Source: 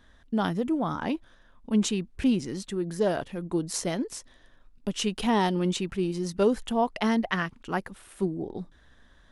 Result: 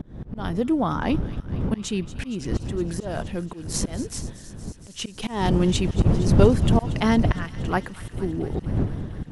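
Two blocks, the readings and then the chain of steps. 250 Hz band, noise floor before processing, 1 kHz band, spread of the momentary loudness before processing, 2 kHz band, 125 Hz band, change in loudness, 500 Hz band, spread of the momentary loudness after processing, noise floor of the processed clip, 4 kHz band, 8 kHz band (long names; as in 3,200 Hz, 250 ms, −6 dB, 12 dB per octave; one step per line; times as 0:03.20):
+3.0 dB, −58 dBFS, +1.0 dB, 10 LU, +1.0 dB, +11.5 dB, +4.0 dB, +2.5 dB, 15 LU, −43 dBFS, +1.5 dB, +2.5 dB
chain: wind on the microphone 160 Hz −24 dBFS
volume swells 287 ms
delay with a high-pass on its return 232 ms, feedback 79%, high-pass 1,800 Hz, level −15 dB
level +5 dB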